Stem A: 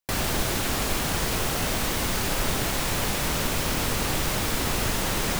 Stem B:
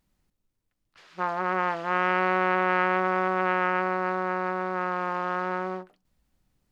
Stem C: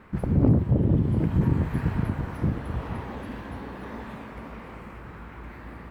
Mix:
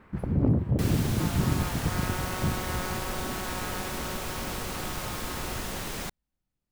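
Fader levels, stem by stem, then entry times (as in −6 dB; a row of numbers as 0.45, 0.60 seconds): −9.0, −13.5, −4.0 decibels; 0.70, 0.00, 0.00 seconds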